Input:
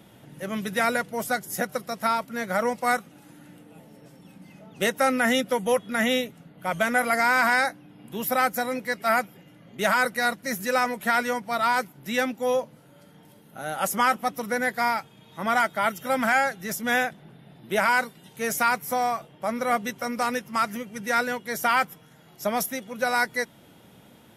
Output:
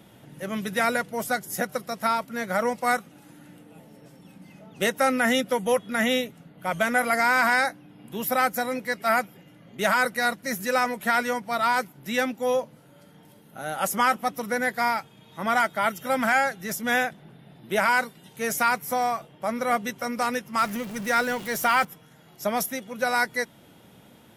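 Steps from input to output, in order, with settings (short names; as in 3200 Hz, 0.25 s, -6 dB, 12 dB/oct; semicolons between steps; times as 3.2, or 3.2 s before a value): 20.58–21.85 zero-crossing step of -34.5 dBFS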